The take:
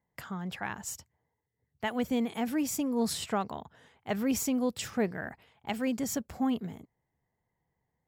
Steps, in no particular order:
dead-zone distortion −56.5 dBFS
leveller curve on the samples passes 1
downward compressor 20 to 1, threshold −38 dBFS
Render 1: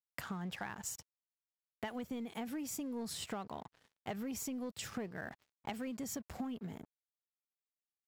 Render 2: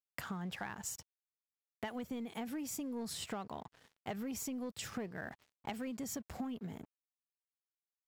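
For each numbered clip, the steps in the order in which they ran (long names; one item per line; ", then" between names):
dead-zone distortion, then leveller curve on the samples, then downward compressor
leveller curve on the samples, then dead-zone distortion, then downward compressor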